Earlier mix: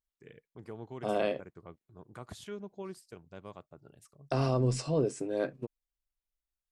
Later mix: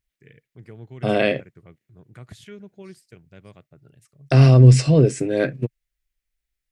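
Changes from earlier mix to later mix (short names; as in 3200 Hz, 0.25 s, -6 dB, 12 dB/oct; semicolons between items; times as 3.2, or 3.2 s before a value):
second voice +11.5 dB; master: add graphic EQ 125/1000/2000 Hz +9/-9/+9 dB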